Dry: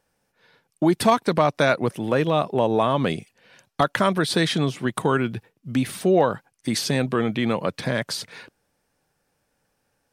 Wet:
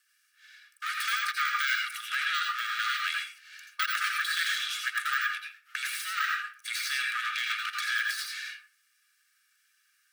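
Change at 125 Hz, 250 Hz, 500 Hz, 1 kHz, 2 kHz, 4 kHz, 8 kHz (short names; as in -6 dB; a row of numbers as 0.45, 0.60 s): under -40 dB, under -40 dB, under -40 dB, -8.5 dB, +2.5 dB, -1.0 dB, -4.0 dB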